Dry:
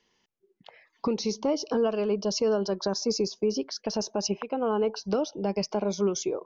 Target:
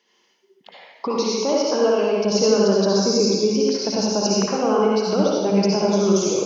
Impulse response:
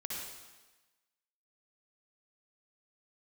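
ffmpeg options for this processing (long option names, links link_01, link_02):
-filter_complex "[0:a]asetnsamples=nb_out_samples=441:pad=0,asendcmd='2.24 highpass f 76',highpass=300[link_01];[1:a]atrim=start_sample=2205,asetrate=42336,aresample=44100[link_02];[link_01][link_02]afir=irnorm=-1:irlink=0,volume=8.5dB"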